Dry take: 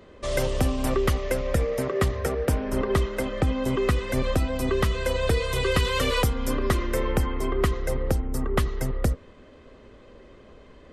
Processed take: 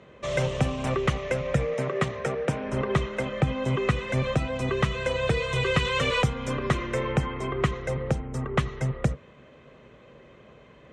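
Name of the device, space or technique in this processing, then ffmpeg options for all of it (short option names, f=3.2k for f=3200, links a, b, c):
car door speaker: -filter_complex "[0:a]highpass=80,equalizer=f=87:t=q:w=4:g=-8,equalizer=f=140:t=q:w=4:g=9,equalizer=f=280:t=q:w=4:g=-6,equalizer=f=390:t=q:w=4:g=-3,equalizer=f=2.4k:t=q:w=4:g=4,equalizer=f=4.8k:t=q:w=4:g=-10,lowpass=f=7.2k:w=0.5412,lowpass=f=7.2k:w=1.3066,asettb=1/sr,asplit=3[a][b][c];[a]atrim=end=1.744[d];[b]atrim=start=1.74:end=2.64,asetpts=PTS-STARTPTS,afade=t=in:d=0.004:c=qsin,afade=t=out:st=0.896:d=0.004:c=qsin,highpass=140[e];[c]atrim=start=2.636[f];[d][e]acrossfade=d=0.004:c1=hsin:c2=qsin[g];[g][f]acrossfade=d=0.004:c1=qsin:c2=hsin"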